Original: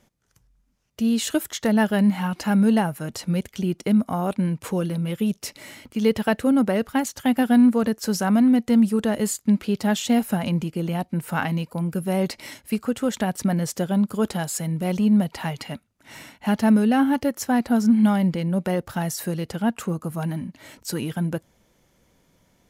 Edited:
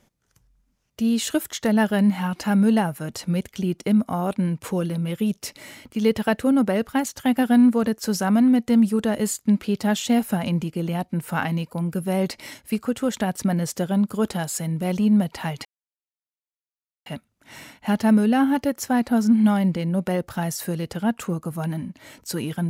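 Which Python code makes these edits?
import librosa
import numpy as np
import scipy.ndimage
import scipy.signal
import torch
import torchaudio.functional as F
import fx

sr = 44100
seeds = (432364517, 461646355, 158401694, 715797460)

y = fx.edit(x, sr, fx.insert_silence(at_s=15.65, length_s=1.41), tone=tone)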